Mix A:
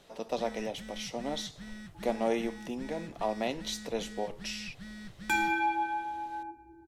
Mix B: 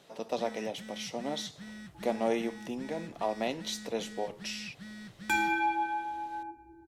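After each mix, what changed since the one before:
first sound: add high-pass filter 110 Hz 12 dB per octave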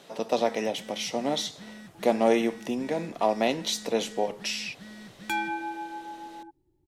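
speech +7.5 dB
reverb: off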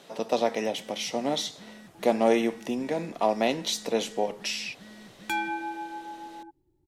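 first sound −3.5 dB

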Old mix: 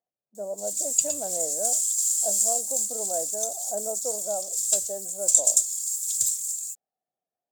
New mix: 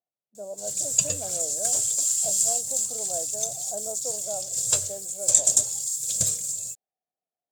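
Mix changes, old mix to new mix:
speech −4.0 dB
background: remove first-order pre-emphasis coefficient 0.9

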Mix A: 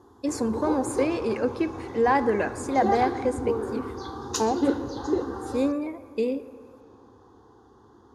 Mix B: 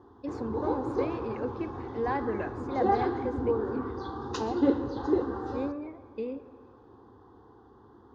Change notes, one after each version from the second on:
speech −8.5 dB
master: add high-frequency loss of the air 230 metres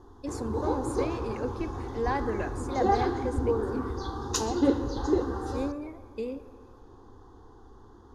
background: remove high-pass filter 110 Hz 12 dB per octave
master: remove high-frequency loss of the air 230 metres

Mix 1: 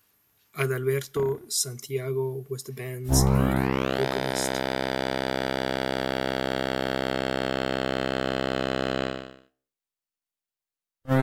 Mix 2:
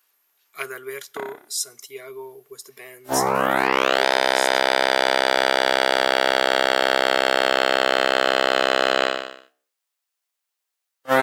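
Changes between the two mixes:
background +12.0 dB
master: add high-pass filter 610 Hz 12 dB per octave

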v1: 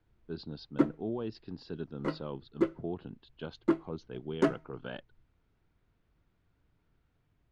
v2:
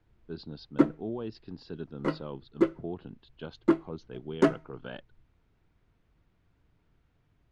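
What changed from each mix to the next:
background +4.0 dB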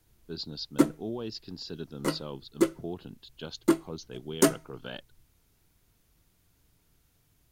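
master: remove low-pass filter 2,200 Hz 12 dB per octave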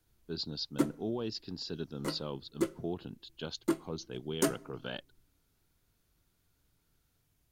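background −7.5 dB
reverb: on, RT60 1.0 s

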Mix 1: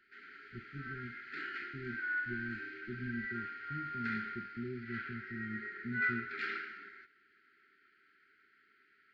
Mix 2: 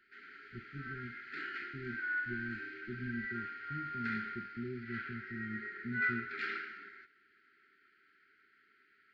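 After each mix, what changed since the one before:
nothing changed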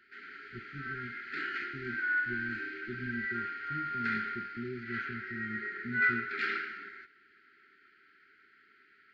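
speech: remove moving average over 52 samples
background +5.5 dB

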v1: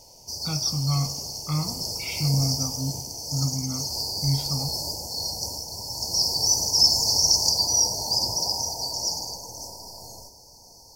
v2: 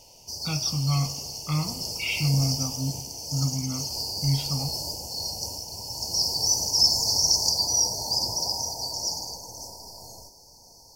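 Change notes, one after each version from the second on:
speech: add parametric band 2,800 Hz +13 dB 0.4 octaves
background: send off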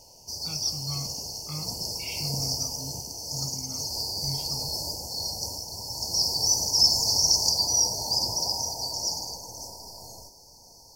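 speech −11.5 dB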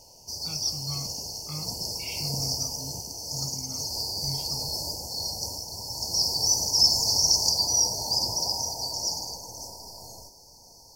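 reverb: off

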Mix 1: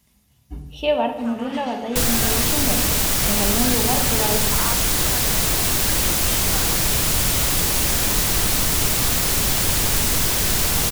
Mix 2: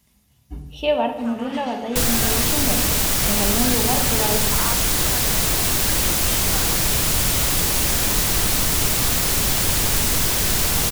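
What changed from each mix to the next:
nothing changed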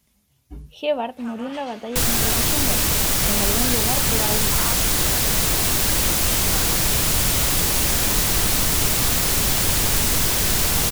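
reverb: off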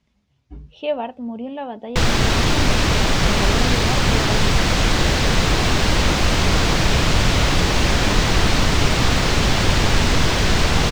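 first sound: muted
second sound +7.0 dB
master: add high-frequency loss of the air 160 metres

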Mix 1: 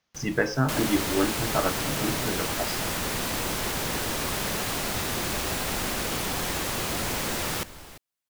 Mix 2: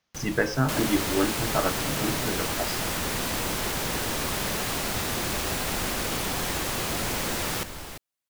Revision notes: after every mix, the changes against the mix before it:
first sound +6.0 dB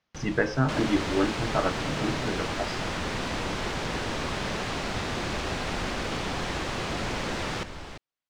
master: add high-frequency loss of the air 120 metres

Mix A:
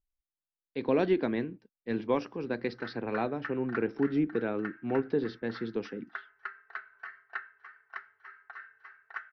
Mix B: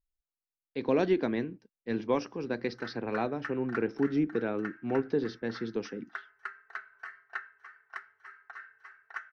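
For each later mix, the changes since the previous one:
master: remove low-pass filter 4,600 Hz 24 dB per octave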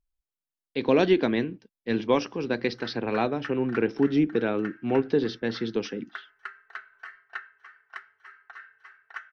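speech +5.5 dB
master: add parametric band 3,200 Hz +7.5 dB 0.76 octaves

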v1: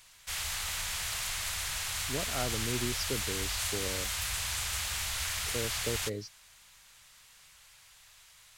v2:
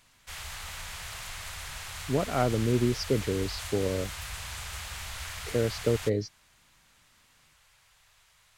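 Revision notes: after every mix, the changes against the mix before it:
speech +10.0 dB
master: add high-shelf EQ 2,400 Hz −8.5 dB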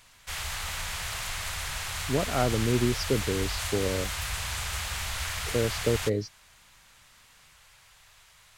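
background +6.0 dB

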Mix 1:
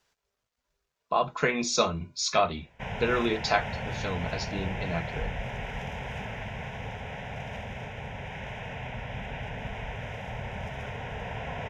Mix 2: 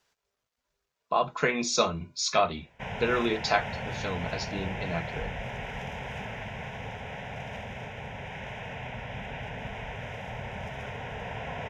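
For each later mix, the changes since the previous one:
master: add low-shelf EQ 77 Hz −6.5 dB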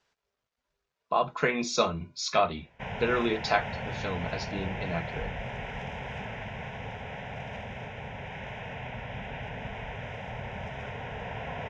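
master: add high-frequency loss of the air 75 metres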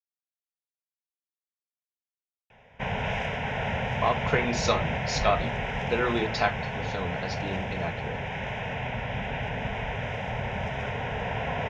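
speech: entry +2.90 s
background +6.5 dB

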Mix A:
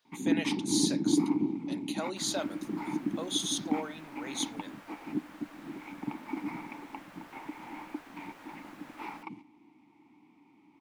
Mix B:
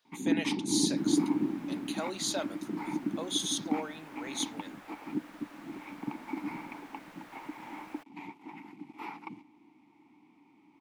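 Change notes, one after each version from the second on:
second sound: entry −1.20 s
master: add low-shelf EQ 150 Hz −3 dB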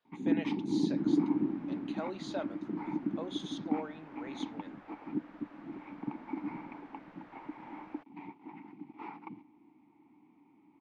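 master: add head-to-tape spacing loss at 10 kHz 33 dB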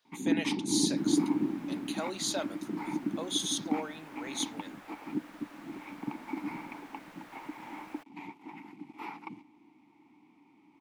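master: remove head-to-tape spacing loss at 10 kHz 33 dB

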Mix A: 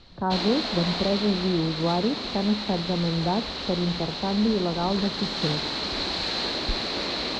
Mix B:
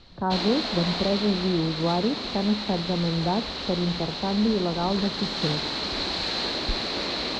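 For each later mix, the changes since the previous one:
nothing changed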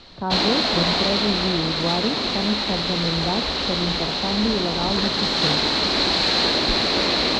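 background +8.5 dB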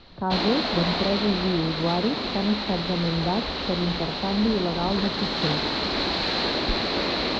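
background −3.0 dB
master: add high-frequency loss of the air 140 metres

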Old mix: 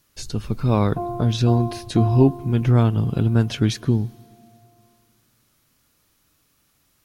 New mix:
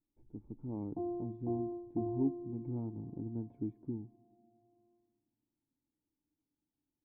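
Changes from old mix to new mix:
speech −11.5 dB
master: add formant resonators in series u

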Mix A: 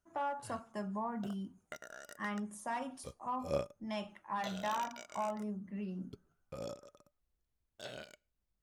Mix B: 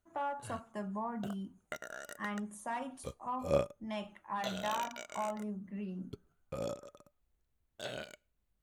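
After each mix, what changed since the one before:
background +5.0 dB
master: add parametric band 5,200 Hz −9 dB 0.24 octaves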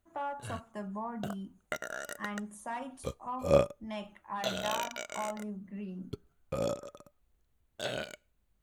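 background +6.0 dB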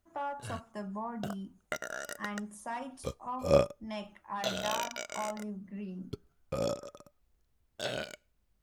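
master: add parametric band 5,200 Hz +9 dB 0.24 octaves

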